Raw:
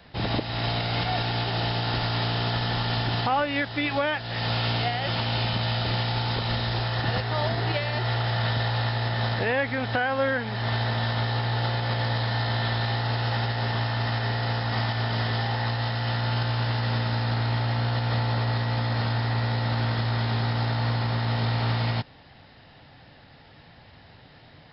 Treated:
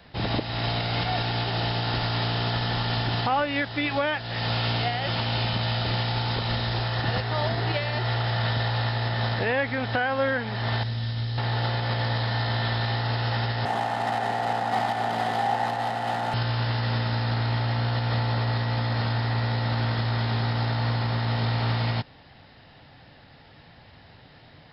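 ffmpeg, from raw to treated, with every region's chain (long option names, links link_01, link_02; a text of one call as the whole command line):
ffmpeg -i in.wav -filter_complex "[0:a]asettb=1/sr,asplit=3[link_01][link_02][link_03];[link_01]atrim=end=10.834[link_04];[link_02]atrim=start=10.83:end=11.38,asetpts=PTS-STARTPTS,afade=type=in:duration=0.004:curve=qsin,afade=type=out:start_time=0.546:duration=0.004:curve=qsin,equalizer=frequency=910:width=0.37:gain=-15,asplit=2[link_05][link_06];[link_06]adelay=27,volume=-13.5dB[link_07];[link_05][link_07]amix=inputs=2:normalize=0,atrim=end_sample=24255[link_08];[link_03]atrim=start=11.376[link_09];[link_04][link_08]acrossfade=duration=0.004:curve1=hsin:curve2=qsin[link_10];[link_10][link_09]acrossfade=duration=0.004:curve1=qsin:curve2=hsin,asettb=1/sr,asplit=3[link_11][link_12][link_13];[link_11]atrim=end=13.654[link_14];[link_12]atrim=start=13.65:end=16.34,asetpts=PTS-STARTPTS,afade=type=in:duration=0.004:curve=qsin,afade=type=out:start_time=2.686:duration=0.004:curve=qsin,highpass=frequency=160:width=0.5412,highpass=frequency=160:width=1.3066,adynamicsmooth=sensitivity=4:basefreq=1500,equalizer=frequency=760:width=4.7:gain=13.5[link_15];[link_13]atrim=start=16.336[link_16];[link_14][link_15]acrossfade=duration=0.004:curve1=hsin:curve2=qsin[link_17];[link_17][link_16]acrossfade=duration=0.004:curve1=qsin:curve2=hsin" out.wav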